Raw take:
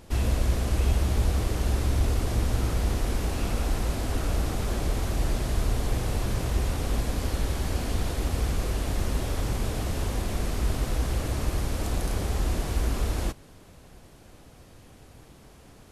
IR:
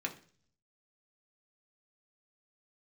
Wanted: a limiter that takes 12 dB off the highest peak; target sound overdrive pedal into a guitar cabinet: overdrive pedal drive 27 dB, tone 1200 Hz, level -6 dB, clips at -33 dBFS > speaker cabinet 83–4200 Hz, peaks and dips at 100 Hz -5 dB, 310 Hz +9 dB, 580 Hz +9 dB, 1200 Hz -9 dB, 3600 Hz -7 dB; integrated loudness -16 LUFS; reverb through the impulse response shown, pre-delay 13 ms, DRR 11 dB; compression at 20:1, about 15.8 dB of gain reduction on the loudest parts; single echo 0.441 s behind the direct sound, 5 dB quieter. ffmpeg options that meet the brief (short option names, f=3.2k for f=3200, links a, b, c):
-filter_complex "[0:a]acompressor=threshold=-35dB:ratio=20,alimiter=level_in=13.5dB:limit=-24dB:level=0:latency=1,volume=-13.5dB,aecho=1:1:441:0.562,asplit=2[a][b];[1:a]atrim=start_sample=2205,adelay=13[c];[b][c]afir=irnorm=-1:irlink=0,volume=-13.5dB[d];[a][d]amix=inputs=2:normalize=0,asplit=2[e][f];[f]highpass=f=720:p=1,volume=27dB,asoftclip=type=tanh:threshold=-33dB[g];[e][g]amix=inputs=2:normalize=0,lowpass=f=1.2k:p=1,volume=-6dB,highpass=83,equalizer=f=100:t=q:w=4:g=-5,equalizer=f=310:t=q:w=4:g=9,equalizer=f=580:t=q:w=4:g=9,equalizer=f=1.2k:t=q:w=4:g=-9,equalizer=f=3.6k:t=q:w=4:g=-7,lowpass=f=4.2k:w=0.5412,lowpass=f=4.2k:w=1.3066,volume=25dB"